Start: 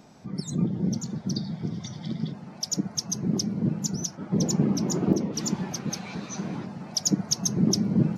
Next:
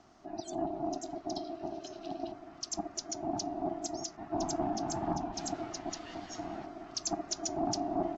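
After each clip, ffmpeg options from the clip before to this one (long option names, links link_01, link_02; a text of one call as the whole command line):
ffmpeg -i in.wav -af "aresample=16000,asoftclip=type=tanh:threshold=-17.5dB,aresample=44100,aeval=exprs='val(0)*sin(2*PI*500*n/s)':channel_layout=same,volume=-5dB" out.wav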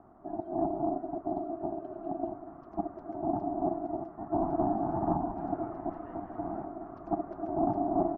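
ffmpeg -i in.wav -af "lowpass=frequency=1200:width=0.5412,lowpass=frequency=1200:width=1.3066,volume=4.5dB" out.wav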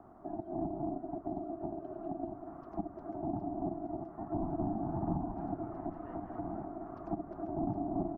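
ffmpeg -i in.wav -filter_complex "[0:a]acrossover=split=250[link_01][link_02];[link_02]acompressor=threshold=-42dB:ratio=3[link_03];[link_01][link_03]amix=inputs=2:normalize=0,volume=1dB" out.wav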